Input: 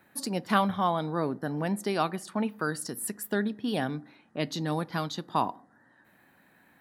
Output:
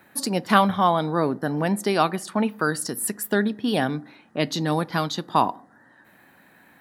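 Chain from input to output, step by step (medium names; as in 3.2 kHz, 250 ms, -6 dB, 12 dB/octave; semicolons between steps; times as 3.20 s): bass shelf 190 Hz -3 dB; trim +7.5 dB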